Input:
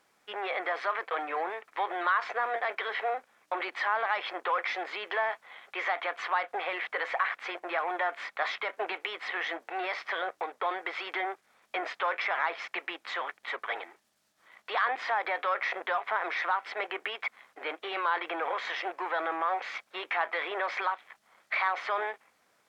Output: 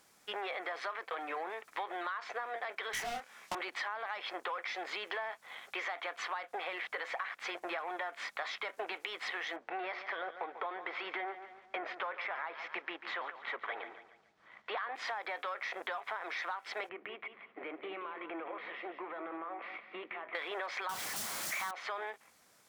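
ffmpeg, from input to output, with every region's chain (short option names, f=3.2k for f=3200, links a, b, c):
-filter_complex "[0:a]asettb=1/sr,asplit=3[a][b][c];[a]atrim=end=2.934[d];[b]atrim=start=2.93:end=3.55,asetpts=PTS-STARTPTS,afade=t=in:d=0.004:c=qsin,afade=t=out:st=0.616:d=0.004:c=qsin,equalizer=f=2.2k:w=0.41:g=9.5,volume=29dB,asoftclip=hard,volume=-29dB,asplit=2[e][f];[f]adelay=25,volume=-3dB[g];[e][g]amix=inputs=2:normalize=0,atrim=end_sample=27342[h];[c]atrim=start=3.546[i];[d][h]acrossfade=d=0.004:c1=hsin:c2=qsin[j];[j][i]acrossfade=d=0.004:c1=qsin:c2=hsin,asettb=1/sr,asplit=3[k][l][m];[k]atrim=end=9.564[n];[l]atrim=start=9.56:end=14.95,asetpts=PTS-STARTPTS,afade=t=in:d=0.004:c=qsin,afade=t=out:st=5.386:d=0.004:c=qsin,lowpass=2.5k,aecho=1:1:142|284|426|568:0.178|0.0711|0.0285|0.0114,atrim=end_sample=237699[o];[m]atrim=start=14.946[p];[n][o]acrossfade=d=0.004:c1=hsin:c2=qsin[q];[q][p]acrossfade=d=0.004:c1=qsin:c2=hsin,asettb=1/sr,asplit=3[r][s][t];[r]atrim=end=16.894[u];[s]atrim=start=16.89:end=20.35,asetpts=PTS-STARTPTS,afade=t=in:d=0.004:c=qsin,afade=t=out:st=3.456:d=0.004:c=qsin,acompressor=threshold=-40dB:ratio=3:attack=3.2:release=140:knee=1:detection=peak,highpass=f=110:w=0.5412,highpass=f=110:w=1.3066,equalizer=f=210:t=q:w=4:g=7,equalizer=f=320:t=q:w=4:g=5,equalizer=f=860:t=q:w=4:g=-6,equalizer=f=1.6k:t=q:w=4:g=-7,lowpass=f=2.4k:w=0.5412,lowpass=f=2.4k:w=1.3066,aecho=1:1:177|354|531:0.316|0.0822|0.0214,atrim=end_sample=152586[v];[t]atrim=start=20.346[w];[u][v]acrossfade=d=0.004:c1=hsin:c2=qsin[x];[x][w]acrossfade=d=0.004:c1=qsin:c2=hsin,asettb=1/sr,asplit=3[y][z][aa];[y]atrim=end=20.894[ab];[z]atrim=start=20.89:end=21.71,asetpts=PTS-STARTPTS,afade=t=in:d=0.004:c=qsin,afade=t=out:st=0.816:d=0.004:c=qsin,aeval=exprs='val(0)+0.5*0.0335*sgn(val(0))':c=same,highpass=120[ac];[aa]atrim=start=21.706[ad];[ab][ac]acrossfade=d=0.004:c1=hsin:c2=qsin[ae];[ae][ad]acrossfade=d=0.004:c1=qsin:c2=hsin,bass=f=250:g=6,treble=f=4k:g=9,acompressor=threshold=-36dB:ratio=6"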